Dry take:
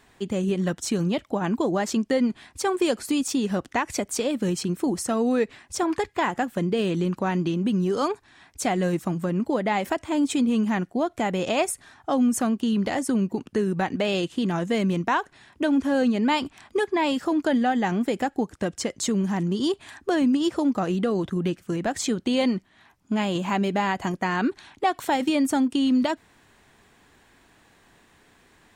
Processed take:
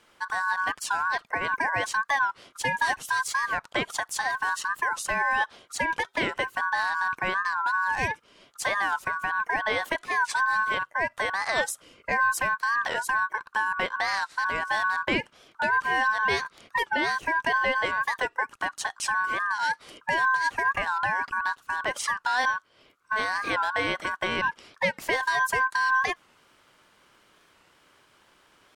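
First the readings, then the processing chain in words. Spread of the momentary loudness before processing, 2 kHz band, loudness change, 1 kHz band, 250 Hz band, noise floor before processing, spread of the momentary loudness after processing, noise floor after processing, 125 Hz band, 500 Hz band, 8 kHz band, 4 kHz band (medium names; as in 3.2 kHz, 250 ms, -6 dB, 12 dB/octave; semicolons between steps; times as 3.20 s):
6 LU, +10.0 dB, -1.5 dB, +3.0 dB, -19.5 dB, -59 dBFS, 6 LU, -62 dBFS, -15.5 dB, -8.5 dB, -3.0 dB, -1.0 dB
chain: ring modulator 1.3 kHz; warped record 45 rpm, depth 160 cents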